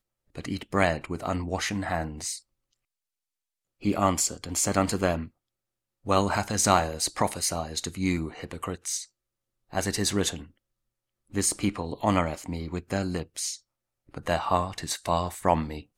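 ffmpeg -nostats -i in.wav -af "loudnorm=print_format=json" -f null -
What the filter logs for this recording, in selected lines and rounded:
"input_i" : "-28.1",
"input_tp" : "-4.6",
"input_lra" : "4.0",
"input_thresh" : "-38.5",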